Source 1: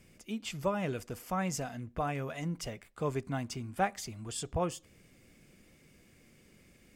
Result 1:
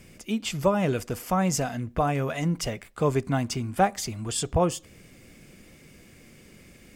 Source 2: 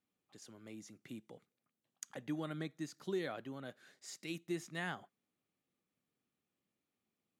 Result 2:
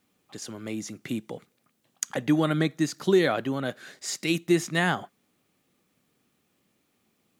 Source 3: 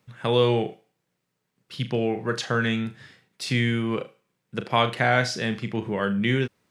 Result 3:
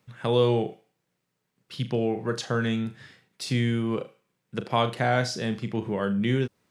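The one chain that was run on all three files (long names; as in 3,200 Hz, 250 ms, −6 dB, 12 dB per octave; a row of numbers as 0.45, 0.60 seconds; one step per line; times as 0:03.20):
dynamic equaliser 2,100 Hz, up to −7 dB, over −42 dBFS, Q 0.89
loudness normalisation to −27 LKFS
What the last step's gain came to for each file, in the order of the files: +10.0, +17.5, −0.5 decibels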